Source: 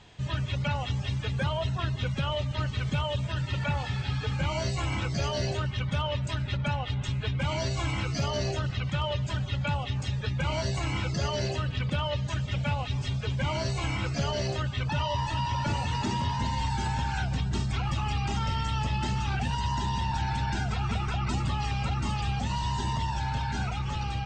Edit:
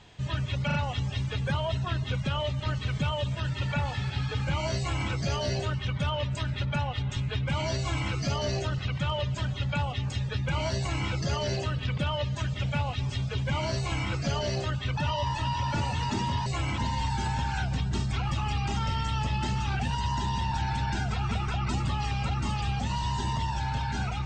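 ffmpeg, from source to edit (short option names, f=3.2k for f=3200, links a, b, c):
-filter_complex "[0:a]asplit=5[a][b][c][d][e];[a]atrim=end=0.702[f];[b]atrim=start=0.658:end=0.702[g];[c]atrim=start=0.658:end=16.382[h];[d]atrim=start=4.698:end=5.022[i];[e]atrim=start=16.378[j];[f][g]acrossfade=d=0.004:c1=hsin:c2=hsin[k];[k][h]acrossfade=d=0.004:c1=hsin:c2=hsin[l];[l][i]acrossfade=d=0.004:c1=hsin:c2=hsin[m];[m][j]acrossfade=d=0.004:c1=hsin:c2=hsin"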